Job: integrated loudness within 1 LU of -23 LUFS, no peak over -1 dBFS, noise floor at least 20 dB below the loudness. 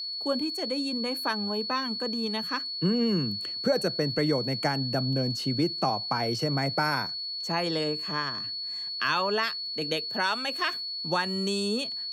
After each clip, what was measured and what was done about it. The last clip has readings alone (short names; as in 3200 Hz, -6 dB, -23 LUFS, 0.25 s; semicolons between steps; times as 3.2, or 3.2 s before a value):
ticks 25/s; steady tone 4400 Hz; tone level -32 dBFS; loudness -28.0 LUFS; peak -14.5 dBFS; loudness target -23.0 LUFS
-> de-click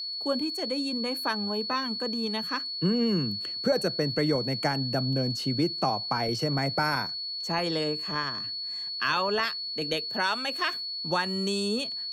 ticks 0.082/s; steady tone 4400 Hz; tone level -32 dBFS
-> notch 4400 Hz, Q 30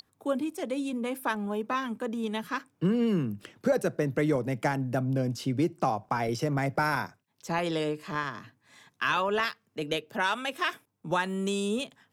steady tone none; loudness -30.0 LUFS; peak -15.5 dBFS; loudness target -23.0 LUFS
-> gain +7 dB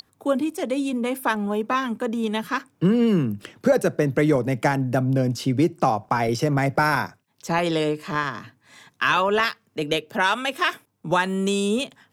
loudness -23.0 LUFS; peak -8.5 dBFS; noise floor -67 dBFS